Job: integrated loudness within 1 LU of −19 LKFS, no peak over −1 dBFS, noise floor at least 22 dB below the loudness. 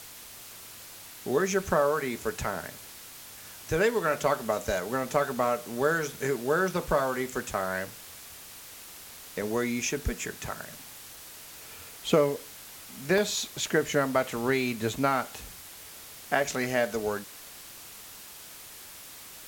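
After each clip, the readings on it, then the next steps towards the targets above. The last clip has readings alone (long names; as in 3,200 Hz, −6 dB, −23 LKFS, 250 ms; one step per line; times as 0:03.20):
number of dropouts 4; longest dropout 1.1 ms; background noise floor −46 dBFS; target noise floor −51 dBFS; integrated loudness −28.5 LKFS; sample peak −9.0 dBFS; target loudness −19.0 LKFS
→ repair the gap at 0:05.44/0:09.42/0:13.18/0:14.37, 1.1 ms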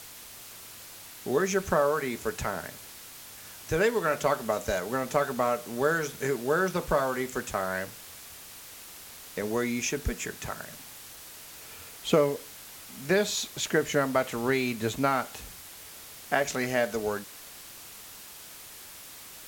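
number of dropouts 0; background noise floor −46 dBFS; target noise floor −51 dBFS
→ noise reduction from a noise print 6 dB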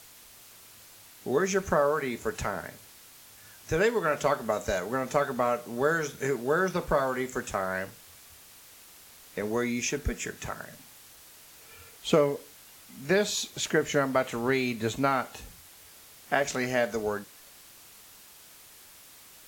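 background noise floor −52 dBFS; integrated loudness −28.5 LKFS; sample peak −8.5 dBFS; target loudness −19.0 LKFS
→ level +9.5 dB
brickwall limiter −1 dBFS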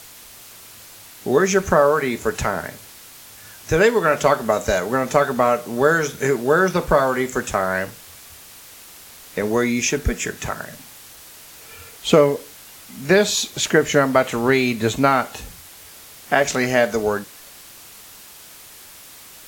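integrated loudness −19.0 LKFS; sample peak −1.0 dBFS; background noise floor −43 dBFS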